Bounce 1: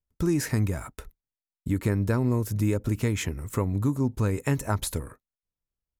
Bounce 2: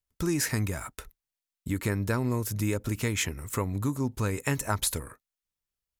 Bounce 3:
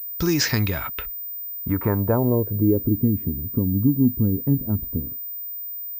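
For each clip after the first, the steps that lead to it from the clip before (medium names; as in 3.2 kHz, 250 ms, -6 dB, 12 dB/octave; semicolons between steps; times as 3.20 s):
tilt shelf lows -4.5 dB, about 930 Hz
low-pass sweep 5.4 kHz -> 250 Hz, 0.43–3.07 s; class-D stage that switches slowly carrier 15 kHz; trim +6.5 dB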